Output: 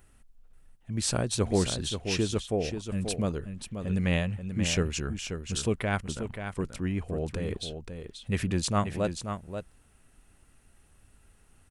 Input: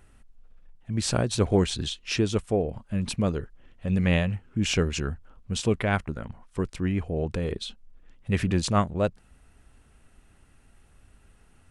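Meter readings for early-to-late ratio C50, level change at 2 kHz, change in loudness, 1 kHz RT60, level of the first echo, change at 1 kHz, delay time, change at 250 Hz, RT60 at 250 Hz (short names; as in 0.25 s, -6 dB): none, -3.0 dB, -3.5 dB, none, -8.0 dB, -3.0 dB, 0.533 s, -3.5 dB, none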